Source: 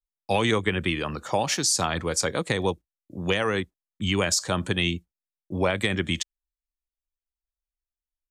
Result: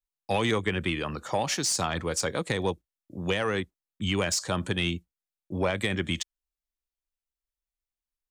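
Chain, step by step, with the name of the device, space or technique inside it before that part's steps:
saturation between pre-emphasis and de-emphasis (high-shelf EQ 4,500 Hz +8 dB; soft clipping −12.5 dBFS, distortion −18 dB; high-shelf EQ 4,500 Hz −8 dB)
level −2 dB

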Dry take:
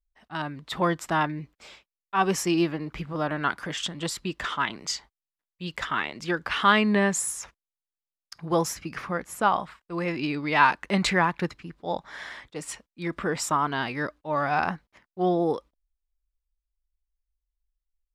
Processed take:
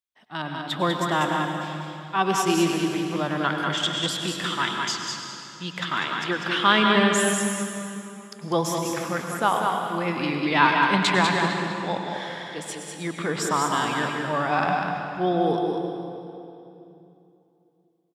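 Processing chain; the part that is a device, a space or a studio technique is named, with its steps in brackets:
PA in a hall (high-pass filter 110 Hz 24 dB per octave; parametric band 3,400 Hz +7.5 dB 0.3 octaves; single-tap delay 196 ms −5 dB; convolution reverb RT60 2.9 s, pre-delay 92 ms, DRR 3.5 dB)

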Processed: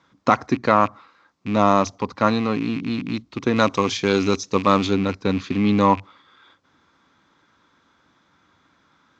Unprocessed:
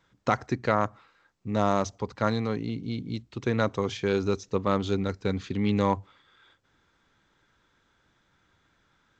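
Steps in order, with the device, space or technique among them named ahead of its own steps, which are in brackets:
car door speaker with a rattle (loose part that buzzes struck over −36 dBFS, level −30 dBFS; loudspeaker in its box 98–6,600 Hz, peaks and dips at 120 Hz −6 dB, 270 Hz +5 dB, 420 Hz −3 dB, 1,100 Hz +6 dB, 1,700 Hz −3 dB, 2,900 Hz −3 dB)
0:03.56–0:04.87: high-shelf EQ 3,900 Hz +11 dB
level +7 dB

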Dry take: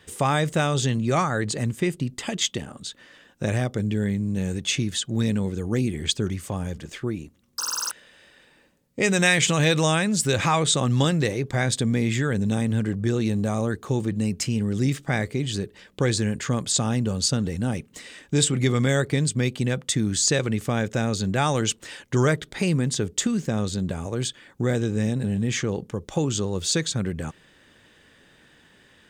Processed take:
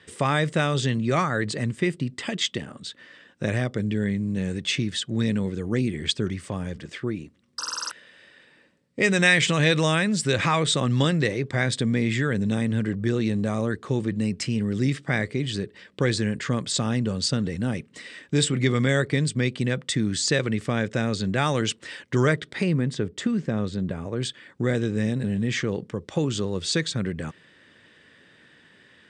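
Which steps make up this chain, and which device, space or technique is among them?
0:22.63–0:24.23: high-shelf EQ 3,100 Hz −10.5 dB
car door speaker (loudspeaker in its box 96–8,200 Hz, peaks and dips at 800 Hz −5 dB, 1,900 Hz +4 dB, 6,600 Hz −8 dB)

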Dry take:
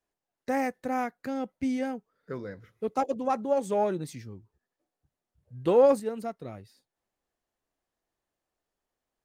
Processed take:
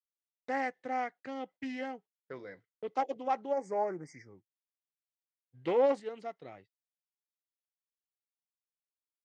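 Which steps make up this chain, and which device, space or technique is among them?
healed spectral selection 0:03.55–0:04.51, 2,300–4,700 Hz after
noise gate −45 dBFS, range −40 dB
full-range speaker at full volume (highs frequency-modulated by the lows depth 0.18 ms; loudspeaker in its box 180–6,600 Hz, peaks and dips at 220 Hz −8 dB, 2,000 Hz +9 dB, 3,100 Hz +8 dB)
parametric band 780 Hz +5 dB 0.3 octaves
level −7 dB

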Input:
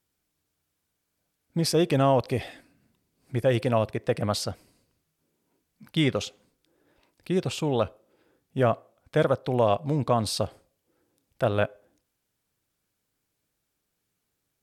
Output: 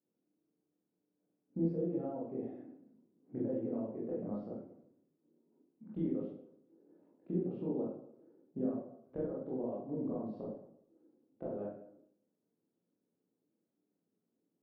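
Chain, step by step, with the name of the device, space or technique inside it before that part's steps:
high-pass filter 210 Hz 24 dB per octave
0:01.60–0:02.13: comb filter 5.9 ms, depth 77%
high-shelf EQ 5,400 Hz −8 dB
television next door (downward compressor 6 to 1, threshold −36 dBFS, peak gain reduction 19.5 dB; low-pass filter 340 Hz 12 dB per octave; convolution reverb RT60 0.70 s, pre-delay 18 ms, DRR −7 dB)
level −1 dB

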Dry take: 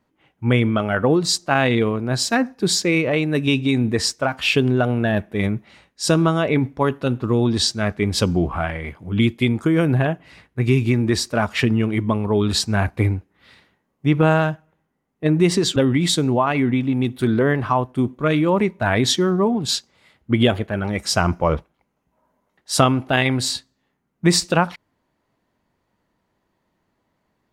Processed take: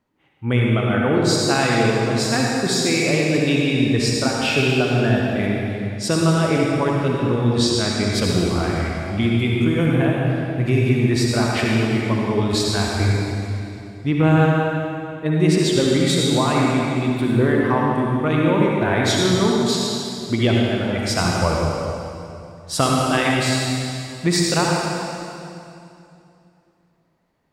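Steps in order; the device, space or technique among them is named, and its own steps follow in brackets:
stairwell (convolution reverb RT60 2.7 s, pre-delay 55 ms, DRR −3 dB)
level −4 dB

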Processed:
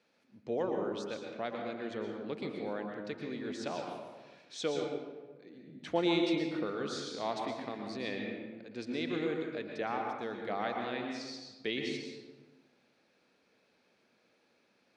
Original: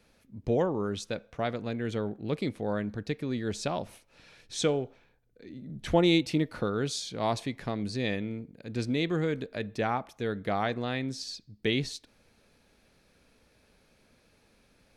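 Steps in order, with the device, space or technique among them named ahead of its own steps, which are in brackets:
supermarket ceiling speaker (band-pass filter 260–5,700 Hz; convolution reverb RT60 1.3 s, pre-delay 108 ms, DRR 1.5 dB)
level −6.5 dB

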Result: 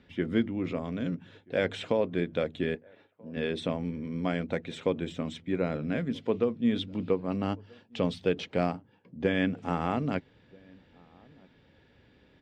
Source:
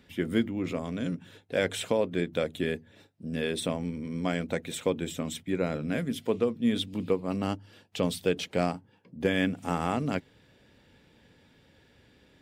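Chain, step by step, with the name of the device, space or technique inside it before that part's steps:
shout across a valley (high-frequency loss of the air 160 metres; slap from a distant wall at 220 metres, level −27 dB)
0:02.75–0:03.37: bass and treble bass −12 dB, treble −14 dB

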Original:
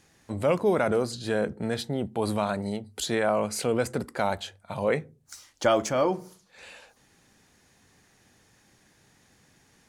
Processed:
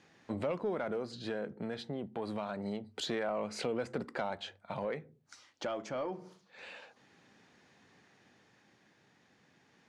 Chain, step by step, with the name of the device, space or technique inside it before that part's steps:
AM radio (band-pass filter 150–3,900 Hz; downward compressor 4 to 1, threshold −31 dBFS, peak gain reduction 11.5 dB; soft clipping −22.5 dBFS, distortion −22 dB; amplitude tremolo 0.27 Hz, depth 36%)

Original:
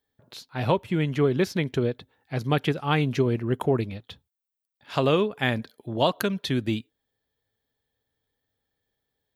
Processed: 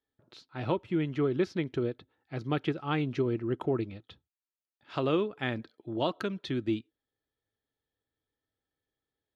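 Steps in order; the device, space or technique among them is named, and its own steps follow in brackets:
inside a cardboard box (low-pass filter 4,900 Hz 12 dB per octave; hollow resonant body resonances 330/1,300 Hz, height 9 dB)
level −8.5 dB

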